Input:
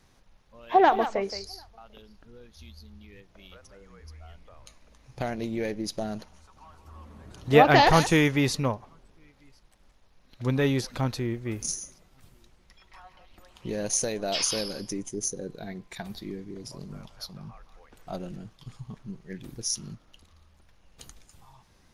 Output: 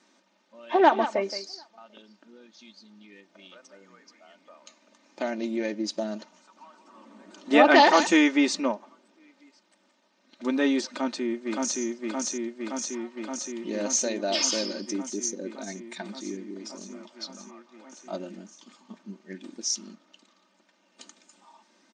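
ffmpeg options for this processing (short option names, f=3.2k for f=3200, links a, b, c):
-filter_complex "[0:a]asplit=2[a][b];[b]afade=t=in:st=10.89:d=0.01,afade=t=out:st=11.8:d=0.01,aecho=0:1:570|1140|1710|2280|2850|3420|3990|4560|5130|5700|6270|6840:0.841395|0.673116|0.538493|0.430794|0.344635|0.275708|0.220567|0.176453|0.141163|0.11293|0.0903441|0.0722753[c];[a][c]amix=inputs=2:normalize=0,afftfilt=real='re*between(b*sr/4096,180,8800)':imag='im*between(b*sr/4096,180,8800)':win_size=4096:overlap=0.75,aecho=1:1:3.3:0.63"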